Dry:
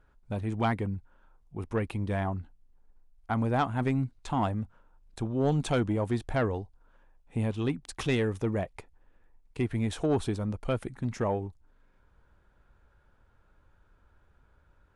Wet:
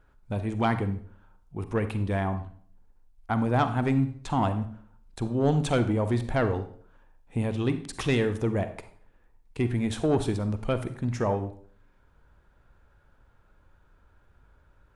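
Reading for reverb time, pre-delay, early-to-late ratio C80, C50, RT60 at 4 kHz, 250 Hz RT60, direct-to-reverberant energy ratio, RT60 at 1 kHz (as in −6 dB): 0.55 s, 39 ms, 15.0 dB, 11.5 dB, 0.45 s, 0.60 s, 10.0 dB, 0.50 s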